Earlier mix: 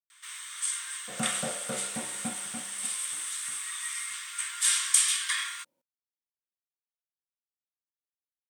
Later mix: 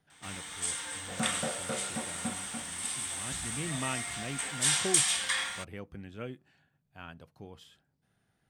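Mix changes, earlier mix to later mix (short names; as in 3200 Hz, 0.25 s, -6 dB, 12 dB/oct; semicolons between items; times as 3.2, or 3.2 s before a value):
speech: unmuted; first sound: remove steep high-pass 1000 Hz 96 dB/oct; master: add high shelf 11000 Hz -9.5 dB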